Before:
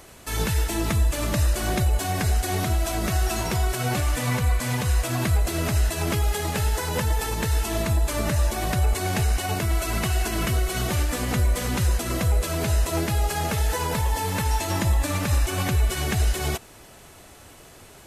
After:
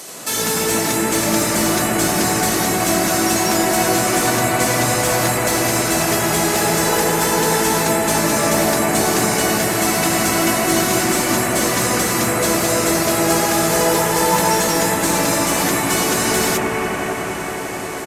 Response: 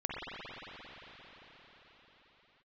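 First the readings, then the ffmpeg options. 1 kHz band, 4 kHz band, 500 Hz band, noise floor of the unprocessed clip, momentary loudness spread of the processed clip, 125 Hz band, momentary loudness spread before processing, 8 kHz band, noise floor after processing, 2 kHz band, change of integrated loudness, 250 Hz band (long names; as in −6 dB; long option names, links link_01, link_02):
+11.5 dB, +10.5 dB, +12.0 dB, −48 dBFS, 2 LU, −2.5 dB, 2 LU, +13.5 dB, −25 dBFS, +11.0 dB, +8.0 dB, +11.0 dB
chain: -filter_complex "[0:a]highpass=frequency=160:width=0.5412,highpass=frequency=160:width=1.3066,equalizer=frequency=11000:width=1.5:gain=-2.5,acrossover=split=4700[link_01][link_02];[link_01]acompressor=threshold=-34dB:ratio=5[link_03];[link_02]asplit=2[link_04][link_05];[link_05]highpass=frequency=720:poles=1,volume=19dB,asoftclip=type=tanh:threshold=-21dB[link_06];[link_04][link_06]amix=inputs=2:normalize=0,lowpass=frequency=7800:poles=1,volume=-6dB[link_07];[link_03][link_07]amix=inputs=2:normalize=0,asplit=2[link_08][link_09];[link_09]adelay=18,volume=-12dB[link_10];[link_08][link_10]amix=inputs=2:normalize=0[link_11];[1:a]atrim=start_sample=2205,asetrate=27783,aresample=44100[link_12];[link_11][link_12]afir=irnorm=-1:irlink=0,volume=8dB"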